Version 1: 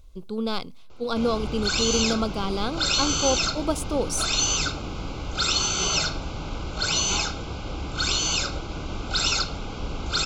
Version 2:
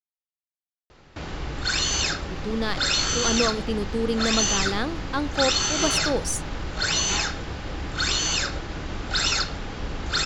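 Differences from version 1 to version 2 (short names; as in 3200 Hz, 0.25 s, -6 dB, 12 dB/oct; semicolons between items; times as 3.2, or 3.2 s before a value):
speech: entry +2.15 s; master: remove Butterworth band-stop 1800 Hz, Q 2.8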